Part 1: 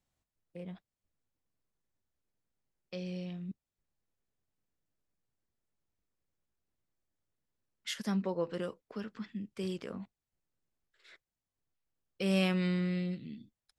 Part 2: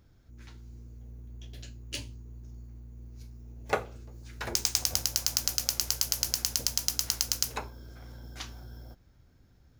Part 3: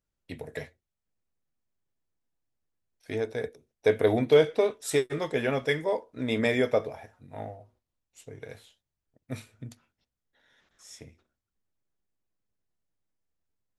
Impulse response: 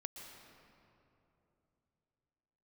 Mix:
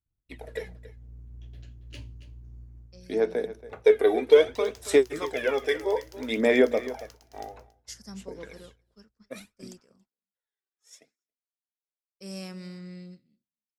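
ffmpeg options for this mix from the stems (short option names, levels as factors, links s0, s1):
-filter_complex "[0:a]highshelf=f=4200:t=q:w=3:g=8,volume=0.316,asplit=2[s0][s1];[s1]volume=0.119[s2];[1:a]bass=f=250:g=4,treble=f=4000:g=-12,lowshelf=f=82:g=7,volume=0.501,afade=t=out:st=2.79:d=0.38:silence=0.316228,asplit=2[s3][s4];[s4]volume=0.251[s5];[2:a]aphaser=in_gain=1:out_gain=1:delay=2.6:decay=0.63:speed=0.61:type=sinusoidal,highpass=f=240:w=0.5412,highpass=f=240:w=1.3066,volume=0.841,asplit=2[s6][s7];[s7]volume=0.158[s8];[s2][s5][s8]amix=inputs=3:normalize=0,aecho=0:1:278:1[s9];[s0][s3][s6][s9]amix=inputs=4:normalize=0,agate=range=0.0224:threshold=0.00794:ratio=3:detection=peak"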